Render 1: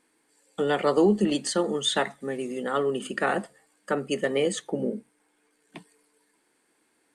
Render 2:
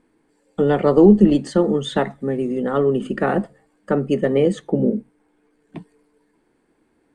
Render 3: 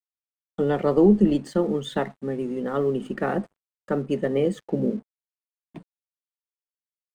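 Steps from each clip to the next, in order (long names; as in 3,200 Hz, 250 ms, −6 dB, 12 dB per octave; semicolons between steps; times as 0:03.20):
spectral tilt −4 dB per octave; level +3 dB
dead-zone distortion −46 dBFS; level −5.5 dB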